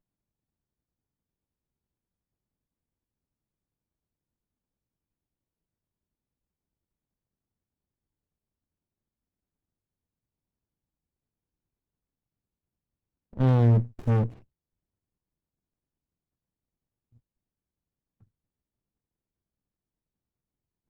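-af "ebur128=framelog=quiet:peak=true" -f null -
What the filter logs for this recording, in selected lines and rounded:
Integrated loudness:
  I:         -24.0 LUFS
  Threshold: -36.8 LUFS
Loudness range:
  LRA:         7.0 LU
  Threshold: -49.2 LUFS
  LRA low:   -35.0 LUFS
  LRA high:  -28.0 LUFS
True peak:
  Peak:      -12.8 dBFS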